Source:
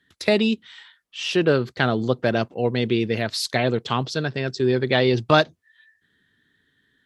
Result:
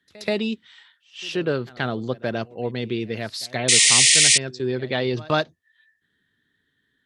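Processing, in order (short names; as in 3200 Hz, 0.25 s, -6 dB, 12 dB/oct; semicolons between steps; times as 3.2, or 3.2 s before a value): pre-echo 0.129 s -21.5 dB; painted sound noise, 3.68–4.38, 1800–9800 Hz -10 dBFS; gain -5 dB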